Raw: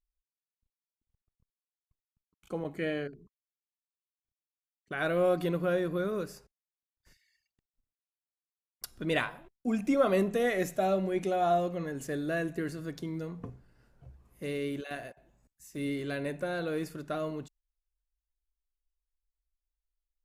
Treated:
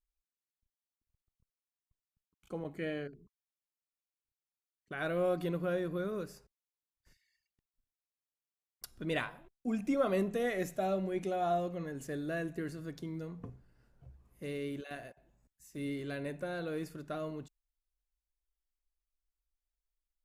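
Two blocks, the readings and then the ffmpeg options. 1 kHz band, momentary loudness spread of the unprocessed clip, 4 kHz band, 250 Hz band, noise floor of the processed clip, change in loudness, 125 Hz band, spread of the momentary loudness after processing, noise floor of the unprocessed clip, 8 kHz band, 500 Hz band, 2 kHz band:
-5.5 dB, 14 LU, -5.5 dB, -4.0 dB, under -85 dBFS, -5.0 dB, -3.5 dB, 15 LU, under -85 dBFS, -5.5 dB, -5.0 dB, -5.5 dB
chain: -af "lowshelf=f=220:g=3,volume=0.531"

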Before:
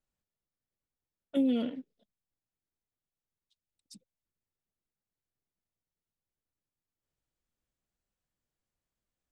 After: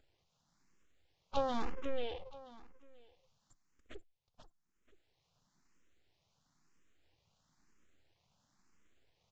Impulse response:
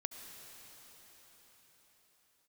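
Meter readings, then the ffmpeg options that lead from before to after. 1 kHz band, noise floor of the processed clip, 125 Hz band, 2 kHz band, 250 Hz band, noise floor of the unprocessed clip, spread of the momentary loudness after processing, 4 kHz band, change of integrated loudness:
+14.0 dB, -81 dBFS, no reading, +5.0 dB, -14.5 dB, under -85 dBFS, 22 LU, 0.0 dB, -8.5 dB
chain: -filter_complex "[0:a]equalizer=f=160:t=o:w=0.67:g=7,equalizer=f=400:t=o:w=0.67:g=-4,equalizer=f=1000:t=o:w=0.67:g=4,afftdn=nr=27:nf=-58,adynamicequalizer=threshold=0.00158:dfrequency=2700:dqfactor=1:tfrequency=2700:tqfactor=1:attack=5:release=100:ratio=0.375:range=2:mode=boostabove:tftype=bell,acompressor=mode=upward:threshold=0.0112:ratio=2.5,aeval=exprs='abs(val(0))':c=same,aecho=1:1:486|972|1458:0.447|0.107|0.0257,aresample=16000,aresample=44100,asplit=2[s0][s1];[s1]afreqshift=1[s2];[s0][s2]amix=inputs=2:normalize=1,volume=1.33"

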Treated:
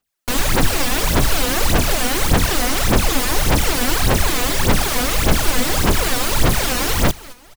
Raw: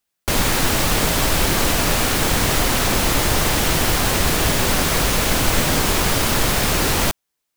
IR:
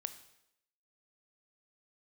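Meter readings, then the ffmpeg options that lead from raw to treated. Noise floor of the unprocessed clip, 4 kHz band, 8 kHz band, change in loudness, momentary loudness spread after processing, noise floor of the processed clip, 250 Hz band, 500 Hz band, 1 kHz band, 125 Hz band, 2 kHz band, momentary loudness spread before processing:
-78 dBFS, -1.0 dB, -1.0 dB, 0.0 dB, 1 LU, -45 dBFS, +1.0 dB, +0.5 dB, 0.0 dB, +1.5 dB, -0.5 dB, 0 LU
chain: -af "aecho=1:1:213|426|639:0.119|0.0428|0.0154,aphaser=in_gain=1:out_gain=1:delay=4.1:decay=0.72:speed=1.7:type=sinusoidal,volume=0.631"

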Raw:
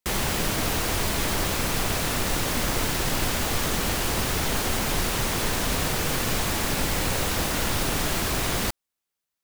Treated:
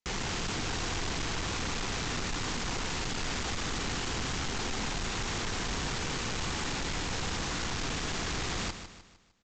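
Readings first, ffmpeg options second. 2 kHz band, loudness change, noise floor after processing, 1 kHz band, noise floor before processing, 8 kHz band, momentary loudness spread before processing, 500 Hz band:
-7.0 dB, -8.5 dB, -52 dBFS, -7.5 dB, -85 dBFS, -9.0 dB, 0 LU, -9.5 dB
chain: -af "equalizer=f=590:w=6:g=-11.5,aresample=16000,asoftclip=type=hard:threshold=0.0316,aresample=44100,aecho=1:1:152|304|456|608|760:0.316|0.136|0.0585|0.0251|0.0108,volume=0.794"

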